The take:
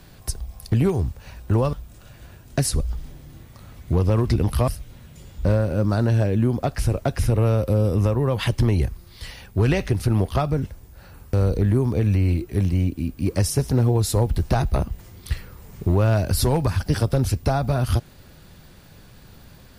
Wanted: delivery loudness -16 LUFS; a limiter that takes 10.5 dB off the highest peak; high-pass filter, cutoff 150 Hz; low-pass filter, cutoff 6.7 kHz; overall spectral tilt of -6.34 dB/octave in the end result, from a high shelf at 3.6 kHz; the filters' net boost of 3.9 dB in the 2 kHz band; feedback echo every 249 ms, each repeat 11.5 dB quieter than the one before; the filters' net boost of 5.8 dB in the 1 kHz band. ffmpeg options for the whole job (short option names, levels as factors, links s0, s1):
-af "highpass=150,lowpass=6700,equalizer=f=1000:t=o:g=7.5,equalizer=f=2000:t=o:g=4,highshelf=f=3600:g=-6,alimiter=limit=0.168:level=0:latency=1,aecho=1:1:249|498|747:0.266|0.0718|0.0194,volume=3.55"